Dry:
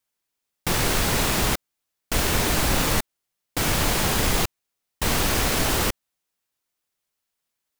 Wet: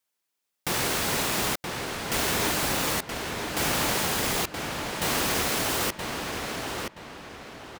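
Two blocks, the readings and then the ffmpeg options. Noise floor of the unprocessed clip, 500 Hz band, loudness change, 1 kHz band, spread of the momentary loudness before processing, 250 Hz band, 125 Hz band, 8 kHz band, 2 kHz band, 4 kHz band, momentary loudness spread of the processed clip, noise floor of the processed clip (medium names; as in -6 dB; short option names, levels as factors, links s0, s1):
-82 dBFS, -2.0 dB, -4.0 dB, -1.5 dB, 8 LU, -4.0 dB, -8.0 dB, -2.5 dB, -1.5 dB, -2.0 dB, 10 LU, -81 dBFS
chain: -filter_complex "[0:a]highpass=f=210:p=1,asplit=2[s0][s1];[s1]alimiter=limit=0.1:level=0:latency=1:release=395,volume=1.26[s2];[s0][s2]amix=inputs=2:normalize=0,asplit=2[s3][s4];[s4]adelay=974,lowpass=f=4100:p=1,volume=0.631,asplit=2[s5][s6];[s6]adelay=974,lowpass=f=4100:p=1,volume=0.35,asplit=2[s7][s8];[s8]adelay=974,lowpass=f=4100:p=1,volume=0.35,asplit=2[s9][s10];[s10]adelay=974,lowpass=f=4100:p=1,volume=0.35[s11];[s3][s5][s7][s9][s11]amix=inputs=5:normalize=0,volume=0.447"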